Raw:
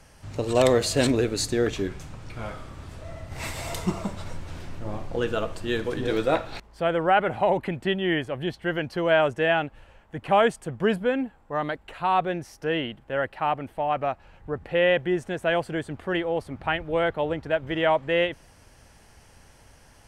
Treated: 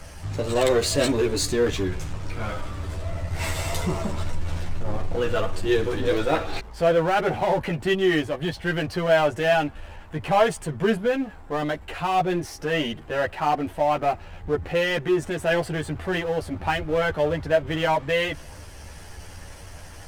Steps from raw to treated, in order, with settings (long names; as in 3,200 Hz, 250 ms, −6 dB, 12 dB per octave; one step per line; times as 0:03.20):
power curve on the samples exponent 0.7
multi-voice chorus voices 6, 0.32 Hz, delay 12 ms, depth 1.8 ms